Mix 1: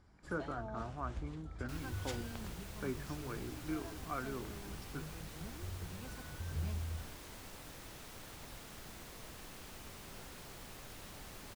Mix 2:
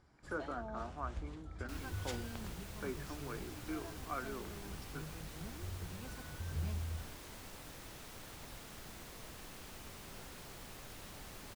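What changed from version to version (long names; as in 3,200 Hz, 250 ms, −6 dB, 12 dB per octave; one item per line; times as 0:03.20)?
speech: add high-pass filter 300 Hz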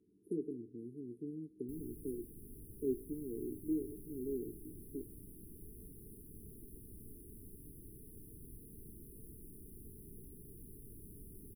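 speech +7.5 dB
first sound: add high-pass with resonance 1,600 Hz, resonance Q 3.7
master: add linear-phase brick-wall band-stop 460–9,400 Hz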